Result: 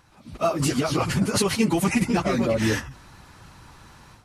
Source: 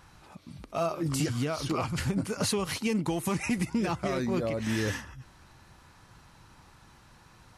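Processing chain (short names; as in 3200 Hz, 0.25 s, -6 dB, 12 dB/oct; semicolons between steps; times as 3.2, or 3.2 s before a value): AGC gain up to 11 dB; dynamic EQ 140 Hz, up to -3 dB, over -38 dBFS, Q 6.1; plain phase-vocoder stretch 0.56×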